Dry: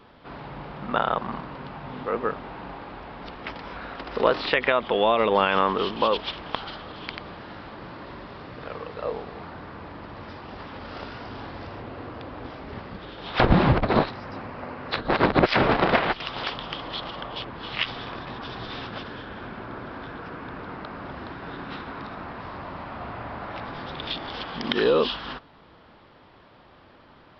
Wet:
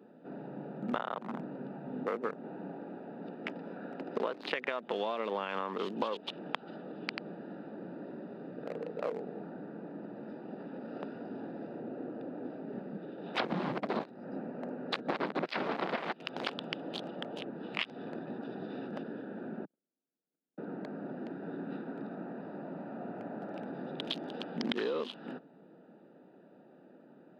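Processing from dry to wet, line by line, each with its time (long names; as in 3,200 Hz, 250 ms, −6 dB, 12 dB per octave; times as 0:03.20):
0:19.65–0:20.58: noise gate −31 dBFS, range −54 dB
whole clip: adaptive Wiener filter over 41 samples; Butterworth high-pass 170 Hz 36 dB per octave; downward compressor 16 to 1, threshold −31 dBFS; level +1 dB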